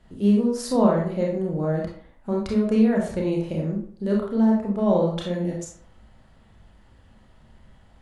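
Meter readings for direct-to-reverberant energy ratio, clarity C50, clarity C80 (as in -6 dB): -2.5 dB, 3.5 dB, 8.0 dB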